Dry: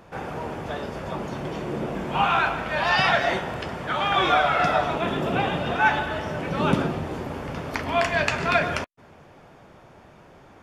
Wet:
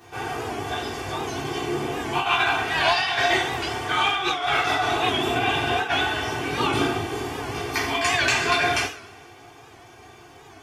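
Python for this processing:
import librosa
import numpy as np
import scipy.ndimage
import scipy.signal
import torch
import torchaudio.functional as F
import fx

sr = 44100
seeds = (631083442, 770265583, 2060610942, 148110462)

y = x + 0.78 * np.pad(x, (int(2.6 * sr / 1000.0), 0))[:len(x)]
y = fx.over_compress(y, sr, threshold_db=-21.0, ratio=-0.5)
y = fx.highpass(y, sr, hz=140.0, slope=6)
y = fx.high_shelf(y, sr, hz=2800.0, db=10.5)
y = fx.notch(y, sr, hz=540.0, q=12.0)
y = fx.rev_double_slope(y, sr, seeds[0], early_s=0.41, late_s=1.6, knee_db=-21, drr_db=-7.0)
y = fx.record_warp(y, sr, rpm=78.0, depth_cents=100.0)
y = y * librosa.db_to_amplitude(-8.5)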